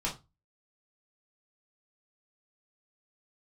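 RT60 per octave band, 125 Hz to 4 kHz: 0.40, 0.30, 0.25, 0.25, 0.20, 0.20 seconds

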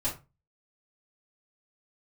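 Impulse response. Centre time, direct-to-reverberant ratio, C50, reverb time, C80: 22 ms, −10.0 dB, 9.5 dB, 0.25 s, 16.5 dB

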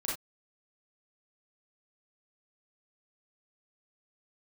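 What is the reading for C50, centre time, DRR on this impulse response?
2.5 dB, 44 ms, −6.0 dB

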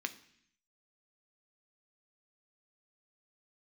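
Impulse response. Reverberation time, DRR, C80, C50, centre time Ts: 0.65 s, 8.0 dB, 18.5 dB, 15.5 dB, 6 ms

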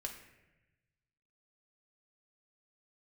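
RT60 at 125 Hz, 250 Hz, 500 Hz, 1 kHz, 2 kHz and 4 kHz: 1.9, 1.3, 1.1, 0.95, 1.2, 0.75 seconds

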